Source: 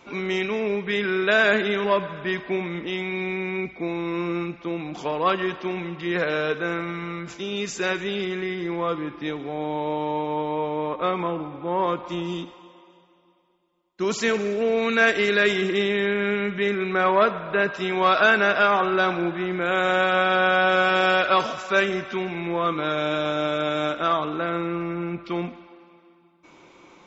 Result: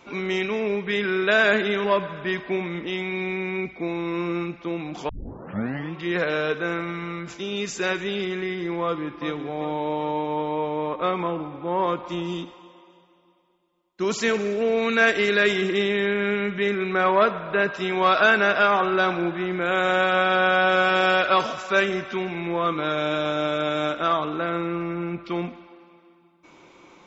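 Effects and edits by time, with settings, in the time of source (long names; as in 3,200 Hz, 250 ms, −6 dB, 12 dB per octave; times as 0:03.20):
0:05.09: tape start 0.86 s
0:08.82–0:09.25: delay throw 390 ms, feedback 55%, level −9.5 dB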